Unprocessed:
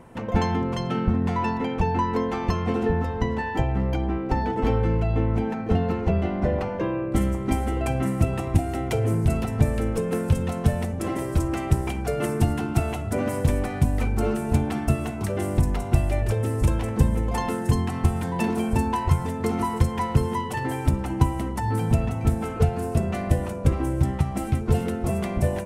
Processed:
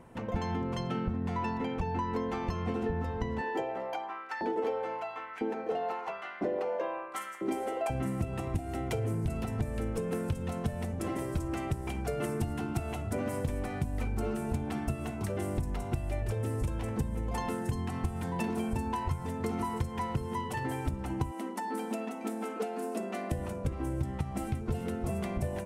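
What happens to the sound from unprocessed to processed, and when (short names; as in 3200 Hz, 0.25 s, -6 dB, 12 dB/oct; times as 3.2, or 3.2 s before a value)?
3.41–7.9 LFO high-pass saw up 1 Hz 300–1700 Hz
21.31–23.32 brick-wall FIR high-pass 200 Hz
whole clip: compressor 6:1, threshold -22 dBFS; gain -6 dB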